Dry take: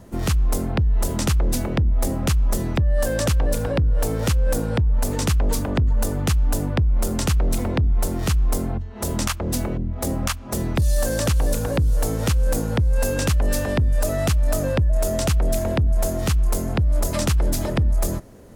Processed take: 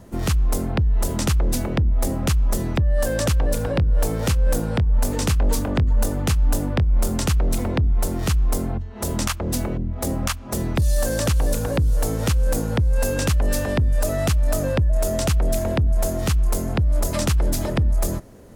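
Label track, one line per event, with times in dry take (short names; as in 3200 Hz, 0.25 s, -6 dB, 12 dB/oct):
3.720000	7.170000	doubler 24 ms -12 dB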